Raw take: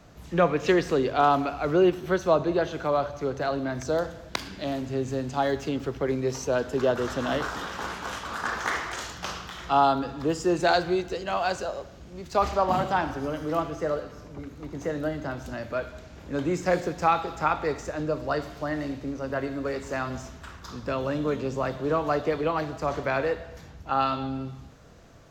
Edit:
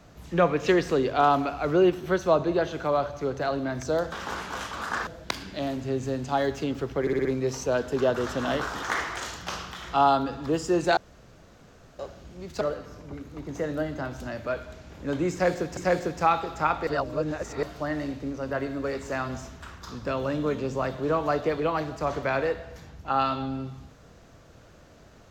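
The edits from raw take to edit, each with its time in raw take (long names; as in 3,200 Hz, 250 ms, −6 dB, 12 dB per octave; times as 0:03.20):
0:06.06: stutter 0.06 s, 5 plays
0:07.64–0:08.59: move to 0:04.12
0:10.73–0:11.75: fill with room tone
0:12.37–0:13.87: remove
0:16.58–0:17.03: repeat, 2 plays
0:17.68–0:18.44: reverse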